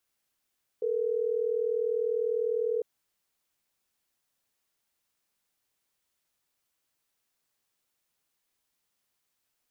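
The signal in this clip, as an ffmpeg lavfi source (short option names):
-f lavfi -i "aevalsrc='0.0376*(sin(2*PI*440*t)+sin(2*PI*480*t))*clip(min(mod(t,6),2-mod(t,6))/0.005,0,1)':d=3.12:s=44100"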